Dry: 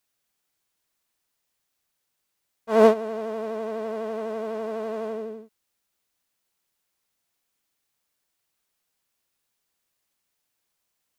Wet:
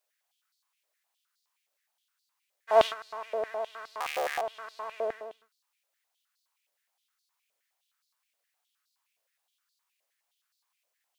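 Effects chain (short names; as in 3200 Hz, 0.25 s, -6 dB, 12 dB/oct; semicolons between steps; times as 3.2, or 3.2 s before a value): 4–4.41 cycle switcher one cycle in 3, inverted; stepped high-pass 9.6 Hz 560–4300 Hz; gain -4.5 dB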